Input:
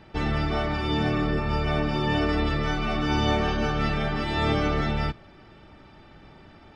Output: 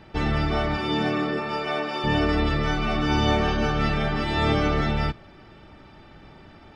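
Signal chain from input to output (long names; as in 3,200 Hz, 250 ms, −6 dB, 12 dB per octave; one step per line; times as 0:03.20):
0:00.76–0:02.03: high-pass filter 130 Hz → 500 Hz 12 dB per octave
level +2 dB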